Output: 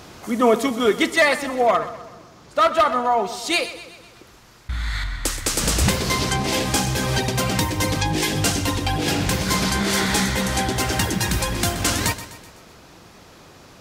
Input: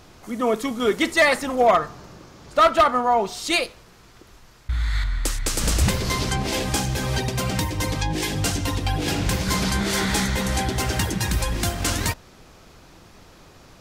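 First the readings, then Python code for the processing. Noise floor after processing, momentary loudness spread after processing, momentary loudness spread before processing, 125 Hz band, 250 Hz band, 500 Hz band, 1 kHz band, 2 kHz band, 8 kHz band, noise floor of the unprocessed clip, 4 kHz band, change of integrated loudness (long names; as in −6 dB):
−47 dBFS, 9 LU, 8 LU, +0.5 dB, +2.5 dB, +1.5 dB, +1.0 dB, +2.0 dB, +3.5 dB, −50 dBFS, +3.0 dB, +1.5 dB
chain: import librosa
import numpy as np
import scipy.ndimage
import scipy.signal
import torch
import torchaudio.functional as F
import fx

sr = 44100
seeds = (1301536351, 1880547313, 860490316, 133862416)

y = fx.echo_feedback(x, sr, ms=126, feedback_pct=51, wet_db=-14.0)
y = fx.rider(y, sr, range_db=10, speed_s=2.0)
y = fx.highpass(y, sr, hz=100.0, slope=6)
y = y * 10.0 ** (2.0 / 20.0)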